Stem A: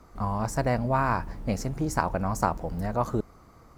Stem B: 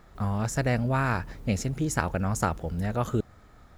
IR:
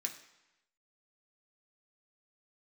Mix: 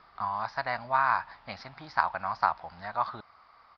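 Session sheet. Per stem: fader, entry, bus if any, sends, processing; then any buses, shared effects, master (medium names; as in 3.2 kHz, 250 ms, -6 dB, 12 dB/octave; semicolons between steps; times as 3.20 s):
+2.0 dB, 0.00 s, no send, high-pass 810 Hz 24 dB/octave
-4.5 dB, 0.4 ms, polarity flipped, no send, tilt EQ +2.5 dB/octave; auto duck -10 dB, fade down 0.30 s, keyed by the first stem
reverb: none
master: steep low-pass 5.1 kHz 96 dB/octave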